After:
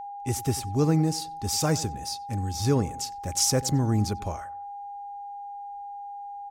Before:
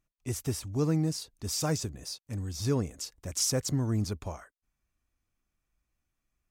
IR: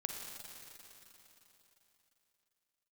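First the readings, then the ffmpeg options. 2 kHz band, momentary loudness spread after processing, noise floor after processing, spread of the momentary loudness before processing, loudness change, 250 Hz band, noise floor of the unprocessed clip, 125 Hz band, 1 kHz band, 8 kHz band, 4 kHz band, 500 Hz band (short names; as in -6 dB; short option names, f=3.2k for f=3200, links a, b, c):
+5.0 dB, 16 LU, -39 dBFS, 11 LU, +5.0 dB, +5.0 dB, -84 dBFS, +5.0 dB, +14.5 dB, +5.0 dB, +5.0 dB, +5.0 dB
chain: -filter_complex "[0:a]aeval=exprs='val(0)+0.01*sin(2*PI*810*n/s)':c=same,asplit=2[a][b];[b]adelay=93,lowpass=f=2k:p=1,volume=-18.5dB,asplit=2[c][d];[d]adelay=93,lowpass=f=2k:p=1,volume=0.43,asplit=2[e][f];[f]adelay=93,lowpass=f=2k:p=1,volume=0.43[g];[a][c][e][g]amix=inputs=4:normalize=0,volume=5dB"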